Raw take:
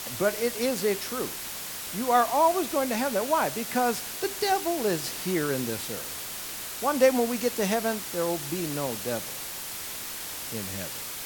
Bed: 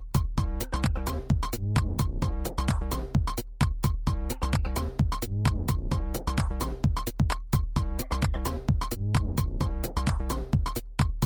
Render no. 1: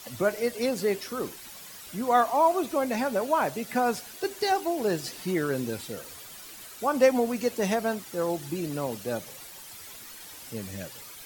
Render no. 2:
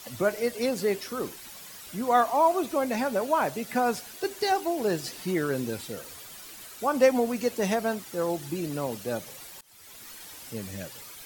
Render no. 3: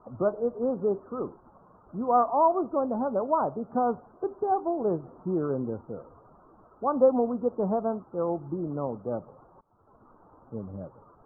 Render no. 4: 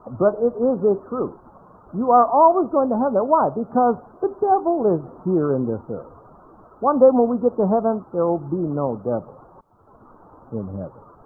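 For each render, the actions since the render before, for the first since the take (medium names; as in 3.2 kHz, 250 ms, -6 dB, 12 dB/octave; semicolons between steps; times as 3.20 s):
noise reduction 11 dB, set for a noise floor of -37 dBFS
9.61–10.09 s: fade in, from -23 dB
local Wiener filter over 9 samples; steep low-pass 1.3 kHz 72 dB/octave
trim +8.5 dB; peak limiter -3 dBFS, peak gain reduction 1.5 dB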